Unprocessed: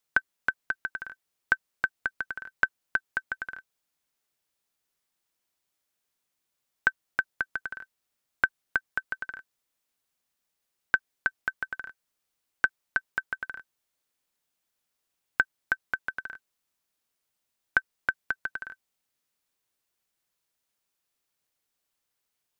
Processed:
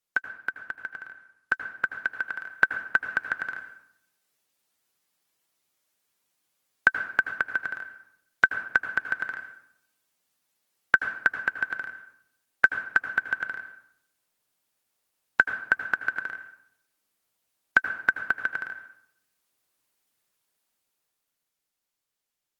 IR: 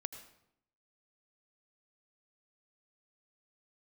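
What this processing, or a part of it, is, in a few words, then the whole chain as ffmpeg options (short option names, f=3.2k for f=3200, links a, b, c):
far-field microphone of a smart speaker: -filter_complex "[0:a]asplit=3[a][b][c];[a]afade=t=out:st=2:d=0.02[d];[b]lowshelf=f=430:g=-3,afade=t=in:st=2:d=0.02,afade=t=out:st=2.54:d=0.02[e];[c]afade=t=in:st=2.54:d=0.02[f];[d][e][f]amix=inputs=3:normalize=0[g];[1:a]atrim=start_sample=2205[h];[g][h]afir=irnorm=-1:irlink=0,highpass=97,dynaudnorm=f=130:g=31:m=13.5dB,volume=-1.5dB" -ar 48000 -c:a libopus -b:a 20k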